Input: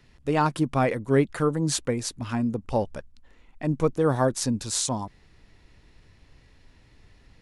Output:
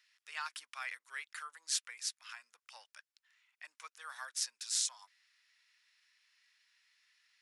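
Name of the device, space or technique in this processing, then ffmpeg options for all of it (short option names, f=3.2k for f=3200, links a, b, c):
headphones lying on a table: -af "highpass=f=1.5k:w=0.5412,highpass=f=1.5k:w=1.3066,equalizer=f=5.3k:t=o:w=0.25:g=4.5,volume=-7dB"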